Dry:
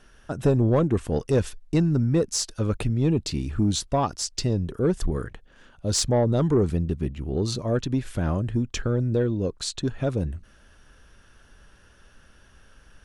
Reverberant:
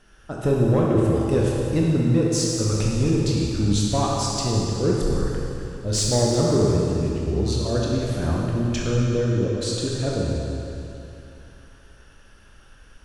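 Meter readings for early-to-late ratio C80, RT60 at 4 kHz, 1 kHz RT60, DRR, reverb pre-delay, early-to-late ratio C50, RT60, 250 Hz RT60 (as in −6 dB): −0.5 dB, 2.8 s, 2.9 s, −4.0 dB, 20 ms, −2.0 dB, 2.9 s, 2.9 s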